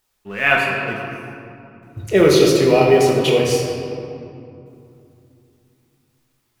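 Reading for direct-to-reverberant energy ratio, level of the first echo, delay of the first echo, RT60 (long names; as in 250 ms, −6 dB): −2.0 dB, no echo audible, no echo audible, 2.7 s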